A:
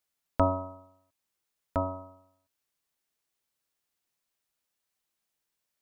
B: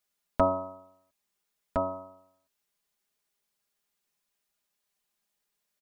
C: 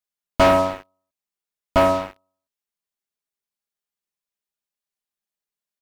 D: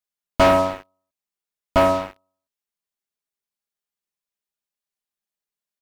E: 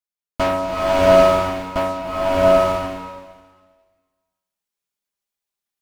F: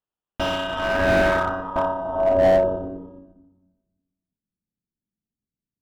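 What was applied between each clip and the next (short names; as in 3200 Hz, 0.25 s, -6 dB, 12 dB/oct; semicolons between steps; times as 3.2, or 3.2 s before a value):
comb 4.9 ms, depth 73%
sample leveller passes 5
nothing audible
bloom reverb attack 0.77 s, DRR -8 dB; gain -5 dB
sample-rate reducer 2200 Hz, jitter 0%; low-pass sweep 2800 Hz -> 210 Hz, 0.59–3.73; slew limiter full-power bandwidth 240 Hz; gain -4.5 dB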